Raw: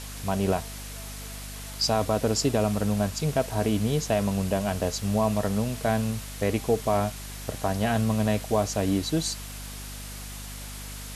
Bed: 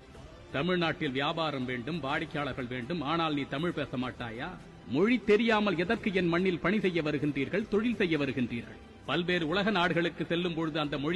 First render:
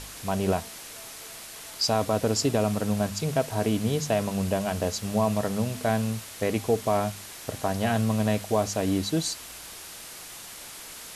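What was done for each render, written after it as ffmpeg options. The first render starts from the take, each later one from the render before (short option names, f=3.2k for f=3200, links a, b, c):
-af "bandreject=f=50:t=h:w=4,bandreject=f=100:t=h:w=4,bandreject=f=150:t=h:w=4,bandreject=f=200:t=h:w=4,bandreject=f=250:t=h:w=4"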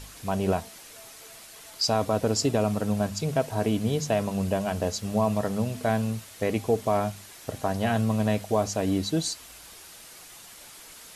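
-af "afftdn=nr=6:nf=-42"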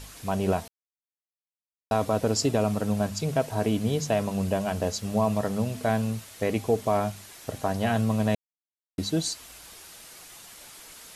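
-filter_complex "[0:a]asplit=5[a][b][c][d][e];[a]atrim=end=0.68,asetpts=PTS-STARTPTS,afade=t=out:st=0.676:d=0.004:c=hsin[f];[b]atrim=start=0.68:end=1.91,asetpts=PTS-STARTPTS,volume=0[g];[c]atrim=start=1.91:end=8.35,asetpts=PTS-STARTPTS,afade=t=in:d=0.004:c=hsin,afade=t=out:st=6.436:d=0.004:c=hsin[h];[d]atrim=start=8.35:end=8.98,asetpts=PTS-STARTPTS,volume=0[i];[e]atrim=start=8.98,asetpts=PTS-STARTPTS,afade=t=in:d=0.004:c=hsin[j];[f][g][h][i][j]concat=n=5:v=0:a=1"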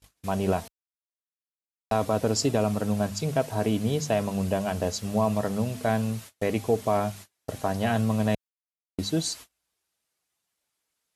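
-af "highpass=41,agate=range=-34dB:threshold=-41dB:ratio=16:detection=peak"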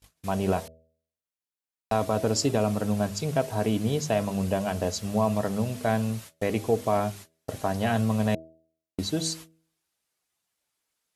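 -af "bandreject=f=80.71:t=h:w=4,bandreject=f=161.42:t=h:w=4,bandreject=f=242.13:t=h:w=4,bandreject=f=322.84:t=h:w=4,bandreject=f=403.55:t=h:w=4,bandreject=f=484.26:t=h:w=4,bandreject=f=564.97:t=h:w=4,bandreject=f=645.68:t=h:w=4"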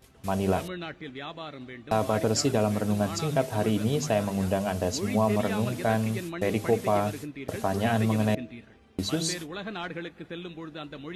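-filter_complex "[1:a]volume=-8dB[a];[0:a][a]amix=inputs=2:normalize=0"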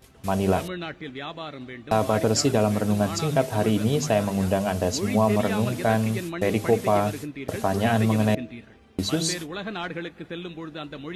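-af "volume=3.5dB"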